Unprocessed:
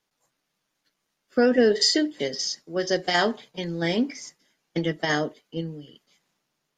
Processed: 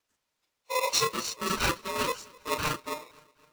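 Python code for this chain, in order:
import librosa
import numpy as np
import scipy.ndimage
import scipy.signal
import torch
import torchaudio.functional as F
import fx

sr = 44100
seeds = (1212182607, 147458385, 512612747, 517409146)

p1 = fx.local_reverse(x, sr, ms=49.0)
p2 = fx.spec_erase(p1, sr, start_s=1.22, length_s=0.72, low_hz=330.0, high_hz=1500.0)
p3 = fx.stretch_vocoder_free(p2, sr, factor=0.52)
p4 = p3 + fx.echo_feedback(p3, sr, ms=256, feedback_pct=51, wet_db=-24.0, dry=0)
y = p4 * np.sign(np.sin(2.0 * np.pi * 760.0 * np.arange(len(p4)) / sr))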